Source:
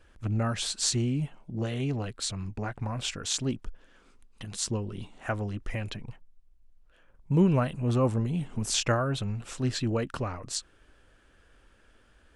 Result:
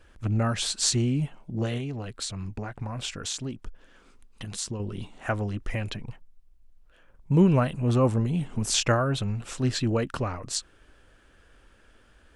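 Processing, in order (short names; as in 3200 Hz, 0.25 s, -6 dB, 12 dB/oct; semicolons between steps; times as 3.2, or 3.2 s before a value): 1.77–4.8 compressor 6:1, threshold -33 dBFS, peak gain reduction 8.5 dB; gain +3 dB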